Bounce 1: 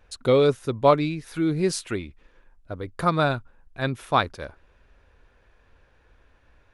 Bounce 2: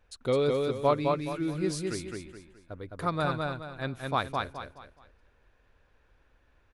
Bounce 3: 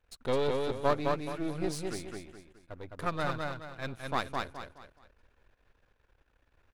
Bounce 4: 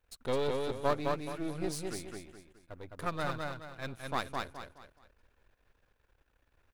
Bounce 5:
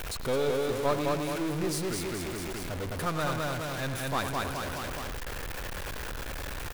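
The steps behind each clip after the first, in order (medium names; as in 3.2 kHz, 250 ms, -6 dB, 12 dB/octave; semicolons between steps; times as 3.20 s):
feedback delay 211 ms, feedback 34%, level -3 dB; trim -8 dB
partial rectifier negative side -12 dB
treble shelf 9 kHz +7.5 dB; trim -2.5 dB
jump at every zero crossing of -30 dBFS; speakerphone echo 100 ms, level -9 dB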